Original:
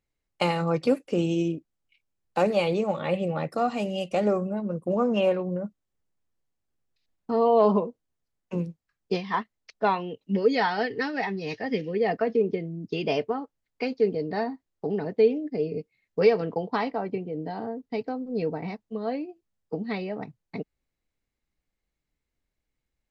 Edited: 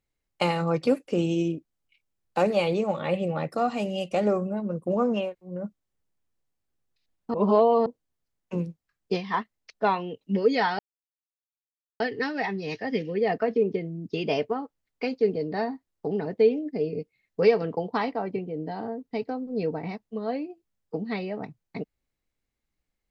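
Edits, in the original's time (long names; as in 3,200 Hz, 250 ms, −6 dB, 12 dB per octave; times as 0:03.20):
0:05.23–0:05.53: fill with room tone, crossfade 0.24 s
0:07.34–0:07.86: reverse
0:10.79: splice in silence 1.21 s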